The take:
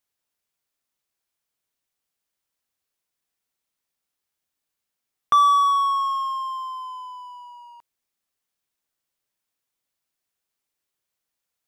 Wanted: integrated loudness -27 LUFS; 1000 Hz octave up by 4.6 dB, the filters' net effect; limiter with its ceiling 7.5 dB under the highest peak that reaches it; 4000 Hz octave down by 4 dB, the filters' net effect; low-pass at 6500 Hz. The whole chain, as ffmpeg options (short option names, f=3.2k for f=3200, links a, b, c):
-af "lowpass=6.5k,equalizer=f=1k:t=o:g=5.5,equalizer=f=4k:t=o:g=-5,volume=-7.5dB,alimiter=limit=-21dB:level=0:latency=1"